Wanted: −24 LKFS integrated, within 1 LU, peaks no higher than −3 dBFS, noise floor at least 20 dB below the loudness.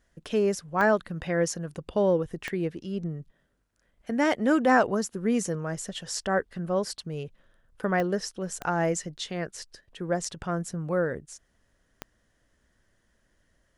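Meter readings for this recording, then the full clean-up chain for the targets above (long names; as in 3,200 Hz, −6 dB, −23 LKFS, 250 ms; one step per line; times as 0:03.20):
number of clicks 5; integrated loudness −28.0 LKFS; sample peak −10.0 dBFS; target loudness −24.0 LKFS
→ click removal
level +4 dB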